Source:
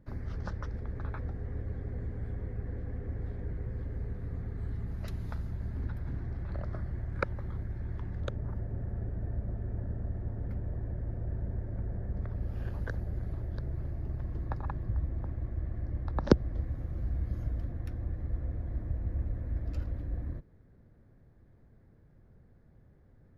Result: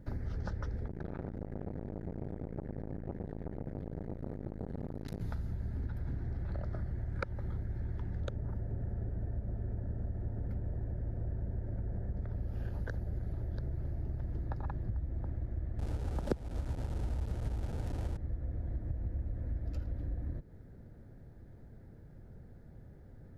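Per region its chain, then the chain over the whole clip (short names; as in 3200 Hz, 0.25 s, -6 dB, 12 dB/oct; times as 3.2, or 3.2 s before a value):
0.88–5.21 notch 750 Hz + tapped delay 46/122 ms -7/-10 dB + core saturation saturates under 620 Hz
15.79–18.17 delta modulation 64 kbps, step -33 dBFS + tilt shelf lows +4.5 dB, about 1100 Hz
whole clip: bell 2300 Hz -3.5 dB 1 oct; notch 1100 Hz, Q 6; compressor 4:1, threshold -42 dBFS; gain +7 dB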